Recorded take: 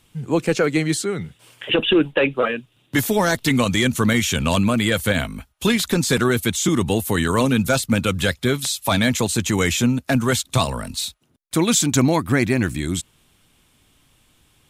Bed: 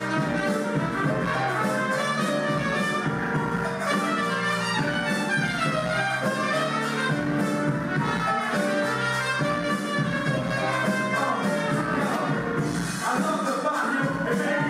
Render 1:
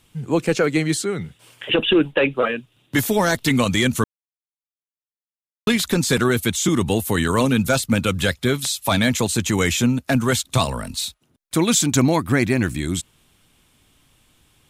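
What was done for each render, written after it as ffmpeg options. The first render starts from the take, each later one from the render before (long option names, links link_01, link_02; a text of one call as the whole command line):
ffmpeg -i in.wav -filter_complex "[0:a]asplit=3[link_01][link_02][link_03];[link_01]atrim=end=4.04,asetpts=PTS-STARTPTS,afade=type=out:start_time=4.036:duration=0.004:curve=hsin[link_04];[link_02]atrim=start=4.04:end=5.67,asetpts=PTS-STARTPTS,volume=0[link_05];[link_03]atrim=start=5.67,asetpts=PTS-STARTPTS,afade=type=in:duration=0.004:curve=hsin[link_06];[link_04][link_05][link_06]concat=n=3:v=0:a=1" out.wav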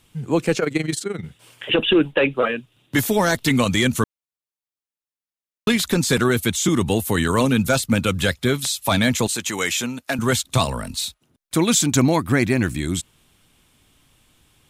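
ffmpeg -i in.wav -filter_complex "[0:a]asettb=1/sr,asplit=3[link_01][link_02][link_03];[link_01]atrim=end=0.594[link_04];[link_02]atrim=start=0.59:end=1.24,asetpts=PTS-STARTPTS,afade=type=in:duration=0.004:curve=qsin,afade=type=out:start_time=0.646:duration=0.004:curve=qsin,tremolo=f=23:d=0.788[link_05];[link_03]atrim=start=1.236[link_06];[link_04][link_05]acrossfade=duration=0.004:curve1=hsin:curve2=qsin[link_07];[link_07][link_06]acrossfade=duration=0.004:curve1=qsin:curve2=hsin,asettb=1/sr,asplit=3[link_08][link_09][link_10];[link_08]atrim=end=9.274[link_11];[link_09]atrim=start=9.27:end=10.19,asetpts=PTS-STARTPTS,afade=type=in:duration=0.004:curve=qsin,afade=type=out:start_time=0.916:duration=0.004:curve=qsin,highpass=frequency=670:poles=1[link_12];[link_10]atrim=start=10.186[link_13];[link_11][link_12]acrossfade=duration=0.004:curve1=hsin:curve2=qsin[link_14];[link_14][link_13]acrossfade=duration=0.004:curve1=qsin:curve2=hsin" out.wav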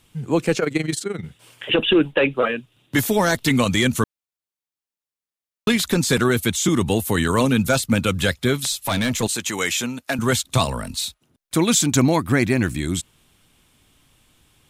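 ffmpeg -i in.wav -filter_complex "[0:a]asettb=1/sr,asplit=3[link_01][link_02][link_03];[link_01]atrim=end=8.724[link_04];[link_02]atrim=start=8.72:end=9.23,asetpts=PTS-STARTPTS,afade=type=in:duration=0.004:curve=qsin,afade=type=out:start_time=0.506:duration=0.004:curve=qsin,aeval=exprs='(tanh(6.31*val(0)+0.15)-tanh(0.15))/6.31':channel_layout=same[link_05];[link_03]atrim=start=9.226[link_06];[link_04][link_05]acrossfade=duration=0.004:curve1=hsin:curve2=qsin[link_07];[link_07][link_06]acrossfade=duration=0.004:curve1=qsin:curve2=hsin" out.wav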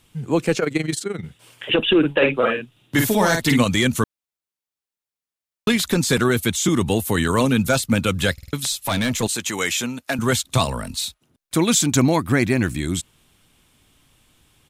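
ffmpeg -i in.wav -filter_complex "[0:a]asplit=3[link_01][link_02][link_03];[link_01]afade=type=out:start_time=2.02:duration=0.02[link_04];[link_02]asplit=2[link_05][link_06];[link_06]adelay=49,volume=-4.5dB[link_07];[link_05][link_07]amix=inputs=2:normalize=0,afade=type=in:start_time=2.02:duration=0.02,afade=type=out:start_time=3.62:duration=0.02[link_08];[link_03]afade=type=in:start_time=3.62:duration=0.02[link_09];[link_04][link_08][link_09]amix=inputs=3:normalize=0,asplit=5[link_10][link_11][link_12][link_13][link_14];[link_10]atrim=end=8.382[link_15];[link_11]atrim=start=8.328:end=8.382[link_16];[link_12]atrim=start=8.328:end=8.382[link_17];[link_13]atrim=start=8.328:end=8.382[link_18];[link_14]atrim=start=8.528[link_19];[link_15][link_16]acrossfade=duration=0.004:curve1=hsin:curve2=hsin[link_20];[link_20][link_17]acrossfade=duration=0.004:curve1=hsin:curve2=hsin[link_21];[link_21][link_18]acrossfade=duration=0.004:curve1=hsin:curve2=hsin[link_22];[link_22][link_19]acrossfade=duration=0.004:curve1=hsin:curve2=hsin" out.wav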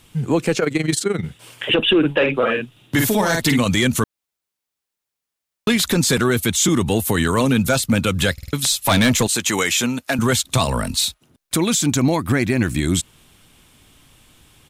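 ffmpeg -i in.wav -af "alimiter=limit=-15dB:level=0:latency=1:release=168,acontrast=74" out.wav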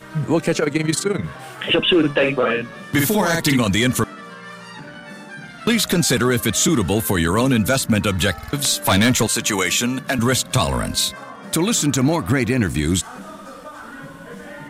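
ffmpeg -i in.wav -i bed.wav -filter_complex "[1:a]volume=-11.5dB[link_01];[0:a][link_01]amix=inputs=2:normalize=0" out.wav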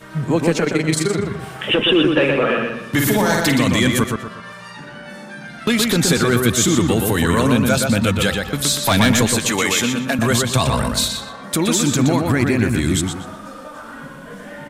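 ffmpeg -i in.wav -filter_complex "[0:a]asplit=2[link_01][link_02];[link_02]adelay=121,lowpass=frequency=4000:poles=1,volume=-3.5dB,asplit=2[link_03][link_04];[link_04]adelay=121,lowpass=frequency=4000:poles=1,volume=0.37,asplit=2[link_05][link_06];[link_06]adelay=121,lowpass=frequency=4000:poles=1,volume=0.37,asplit=2[link_07][link_08];[link_08]adelay=121,lowpass=frequency=4000:poles=1,volume=0.37,asplit=2[link_09][link_10];[link_10]adelay=121,lowpass=frequency=4000:poles=1,volume=0.37[link_11];[link_01][link_03][link_05][link_07][link_09][link_11]amix=inputs=6:normalize=0" out.wav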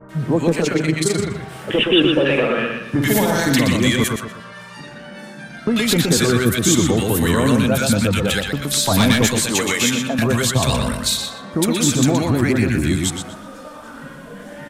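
ffmpeg -i in.wav -filter_complex "[0:a]acrossover=split=1200[link_01][link_02];[link_02]adelay=90[link_03];[link_01][link_03]amix=inputs=2:normalize=0" out.wav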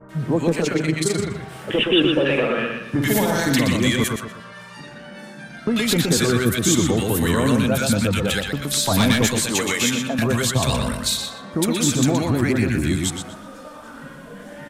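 ffmpeg -i in.wav -af "volume=-2.5dB" out.wav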